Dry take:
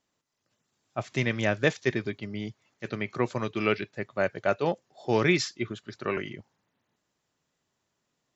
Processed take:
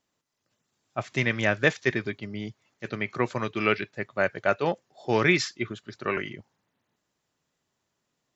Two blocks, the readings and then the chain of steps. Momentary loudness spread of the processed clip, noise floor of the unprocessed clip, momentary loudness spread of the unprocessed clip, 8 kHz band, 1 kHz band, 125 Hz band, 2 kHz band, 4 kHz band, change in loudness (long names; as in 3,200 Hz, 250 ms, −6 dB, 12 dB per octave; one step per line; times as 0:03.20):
14 LU, −80 dBFS, 13 LU, can't be measured, +2.5 dB, 0.0 dB, +4.5 dB, +1.5 dB, +2.0 dB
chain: dynamic equaliser 1,700 Hz, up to +5 dB, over −41 dBFS, Q 0.86